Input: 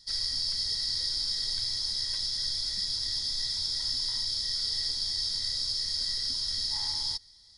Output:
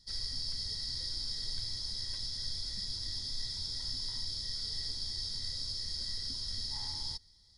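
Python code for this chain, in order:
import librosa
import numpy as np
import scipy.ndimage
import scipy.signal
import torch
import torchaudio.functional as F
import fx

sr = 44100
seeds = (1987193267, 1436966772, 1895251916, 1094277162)

y = fx.low_shelf(x, sr, hz=470.0, db=10.5)
y = y * 10.0 ** (-8.0 / 20.0)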